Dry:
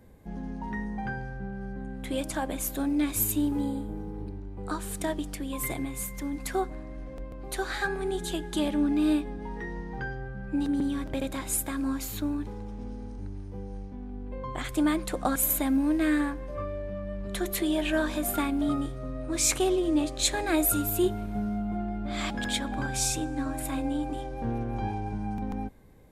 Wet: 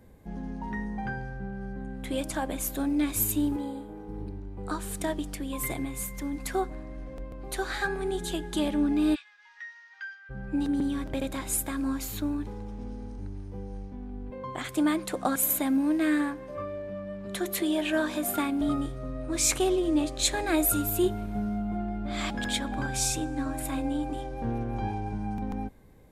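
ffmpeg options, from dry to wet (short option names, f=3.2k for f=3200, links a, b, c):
-filter_complex "[0:a]asettb=1/sr,asplit=3[a][b][c];[a]atrim=end=3.564[d];[b]atrim=start=3.56:end=4.09,asetpts=PTS-STARTPTS,afade=t=in:d=0.004:c=qsin,afade=t=out:st=0.526:d=0.004:c=qsin,bass=f=250:g=-12,treble=f=4k:g=-5[e];[c]atrim=start=4.086[f];[d][e]acrossfade=d=0.004:c1=hsin:c2=qsin[g];[g][f]acrossfade=d=0.004:c1=qsin:c2=hsin,asplit=3[h][i][j];[h]afade=t=out:st=9.14:d=0.02[k];[i]asuperpass=centerf=3200:order=8:qfactor=0.58,afade=t=in:st=9.14:d=0.02,afade=t=out:st=10.29:d=0.02[l];[j]afade=t=in:st=10.29:d=0.02[m];[k][l][m]amix=inputs=3:normalize=0,asettb=1/sr,asplit=3[n][o][p];[n]atrim=end=14.304[q];[o]atrim=start=14.3:end=18.61,asetpts=PTS-STARTPTS,afade=t=in:d=0.004:c=qsin,afade=t=out:st=4.306:d=0.004:c=qsin,highpass=120[r];[p]atrim=start=18.606[s];[q][r]acrossfade=d=0.004:c1=hsin:c2=qsin[t];[t][s]acrossfade=d=0.004:c1=qsin:c2=hsin"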